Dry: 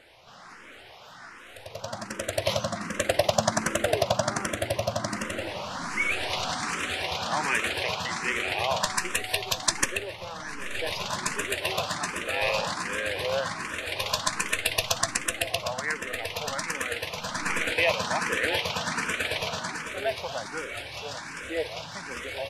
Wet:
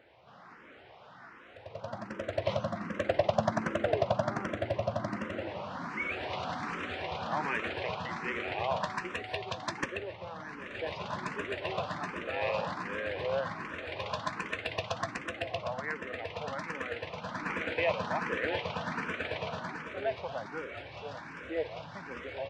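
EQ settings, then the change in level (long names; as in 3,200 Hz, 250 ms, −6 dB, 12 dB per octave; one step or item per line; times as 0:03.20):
high-pass filter 79 Hz
head-to-tape spacing loss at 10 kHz 32 dB
−1.5 dB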